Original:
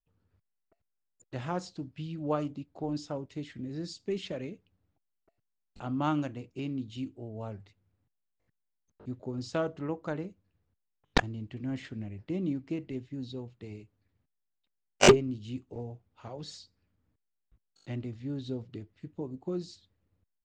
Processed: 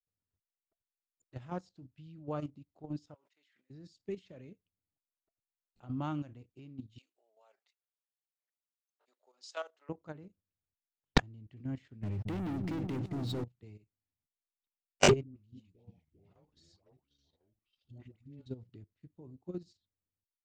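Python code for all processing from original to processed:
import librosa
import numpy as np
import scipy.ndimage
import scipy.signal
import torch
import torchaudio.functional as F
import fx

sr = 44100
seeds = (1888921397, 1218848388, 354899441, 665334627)

y = fx.chain(x, sr, fx.highpass(hz=1400.0, slope=12),
    fx.high_shelf(hz=3600.0, db=-9.0),
    fx.sustainer(db_per_s=63.0), at=(3.14, 3.7))
y = fx.chain(y, sr, fx.highpass(hz=580.0, slope=24),
    fx.high_shelf(hz=2300.0, db=9.5), at=(6.98, 9.89))
y = fx.chain(y, sr, fx.highpass(hz=91.0, slope=6),
    fx.leveller(passes=5),
    fx.echo_opening(ms=220, hz=400, octaves=1, feedback_pct=70, wet_db=-6), at=(12.03, 13.44))
y = fx.chain(y, sr, fx.echo_pitch(ms=301, semitones=-3, count=3, db_per_echo=-6.0),
    fx.level_steps(step_db=12),
    fx.dispersion(late='highs', ms=131.0, hz=670.0), at=(15.23, 18.46))
y = fx.dynamic_eq(y, sr, hz=110.0, q=0.91, threshold_db=-49.0, ratio=4.0, max_db=7)
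y = fx.level_steps(y, sr, step_db=10)
y = fx.upward_expand(y, sr, threshold_db=-51.0, expansion=1.5)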